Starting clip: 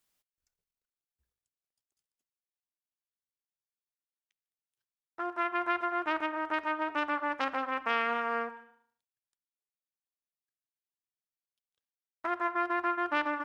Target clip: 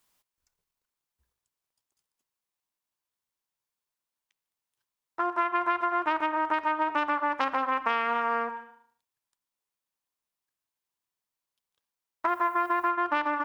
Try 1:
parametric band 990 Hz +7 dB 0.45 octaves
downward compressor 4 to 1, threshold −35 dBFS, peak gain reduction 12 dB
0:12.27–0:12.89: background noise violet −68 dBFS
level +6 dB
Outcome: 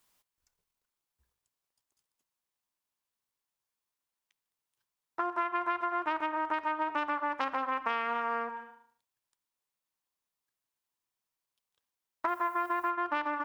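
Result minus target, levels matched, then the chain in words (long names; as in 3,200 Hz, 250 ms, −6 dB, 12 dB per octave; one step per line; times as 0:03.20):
downward compressor: peak gain reduction +5 dB
parametric band 990 Hz +7 dB 0.45 octaves
downward compressor 4 to 1, threshold −28.5 dBFS, peak gain reduction 7 dB
0:12.27–0:12.89: background noise violet −68 dBFS
level +6 dB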